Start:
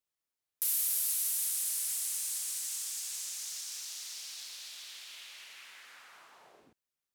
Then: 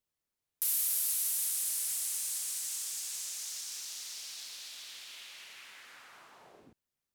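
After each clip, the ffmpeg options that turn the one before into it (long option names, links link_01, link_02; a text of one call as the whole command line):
ffmpeg -i in.wav -af "lowshelf=frequency=360:gain=9" out.wav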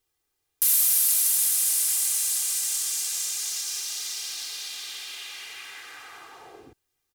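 ffmpeg -i in.wav -af "aecho=1:1:2.5:0.71,volume=8.5dB" out.wav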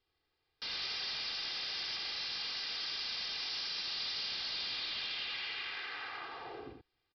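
ffmpeg -i in.wav -af "aresample=11025,asoftclip=type=hard:threshold=-36.5dB,aresample=44100,aecho=1:1:81:0.596" out.wav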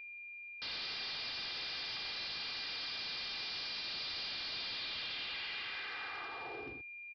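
ffmpeg -i in.wav -af "aeval=exprs='val(0)+0.00501*sin(2*PI*2400*n/s)':channel_layout=same,aresample=11025,asoftclip=type=hard:threshold=-38.5dB,aresample=44100" out.wav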